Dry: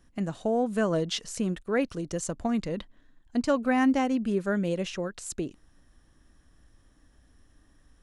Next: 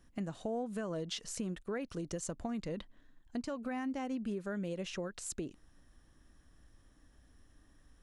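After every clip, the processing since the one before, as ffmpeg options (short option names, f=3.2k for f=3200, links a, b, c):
-af "alimiter=limit=-21dB:level=0:latency=1:release=159,acompressor=threshold=-34dB:ratio=2.5,volume=-3dB"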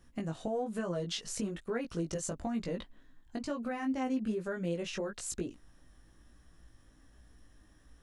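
-af "flanger=delay=17:depth=2.4:speed=1.1,volume=6dB"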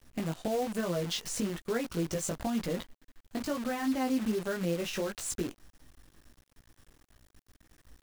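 -af "acrusher=bits=8:dc=4:mix=0:aa=0.000001,volume=3dB"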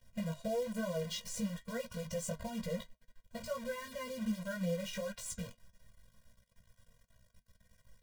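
-af "flanger=delay=8.7:depth=2.1:regen=-60:speed=1:shape=sinusoidal,afftfilt=real='re*eq(mod(floor(b*sr/1024/230),2),0)':imag='im*eq(mod(floor(b*sr/1024/230),2),0)':win_size=1024:overlap=0.75,volume=1dB"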